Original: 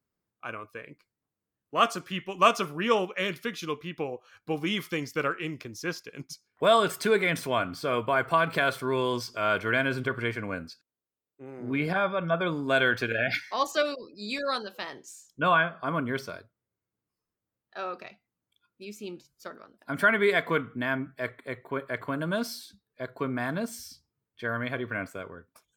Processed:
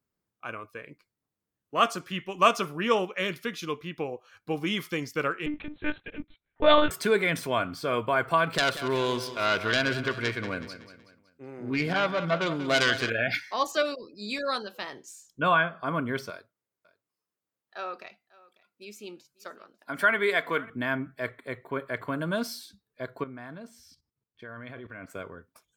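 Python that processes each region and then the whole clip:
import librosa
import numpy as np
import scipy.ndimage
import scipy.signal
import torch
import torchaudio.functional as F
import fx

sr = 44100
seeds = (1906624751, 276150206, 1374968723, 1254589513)

y = fx.chain(x, sr, fx.leveller(passes=1),
    fx.lpc_monotone(seeds[0], pitch_hz=300.0, order=10), at=(5.46, 6.91))
y = fx.chain(y, sr, fx.self_delay(depth_ms=0.18),
    fx.peak_eq(hz=3000.0, db=3.0, octaves=1.6),
    fx.echo_feedback(ms=187, feedback_pct=45, wet_db=-12.5), at=(8.53, 13.1))
y = fx.chain(y, sr, fx.highpass(hz=400.0, slope=6),
    fx.echo_single(ms=546, db=-22.0), at=(16.3, 20.7))
y = fx.chain(y, sr, fx.high_shelf(hz=6600.0, db=-10.0),
    fx.level_steps(step_db=14), at=(23.21, 25.1))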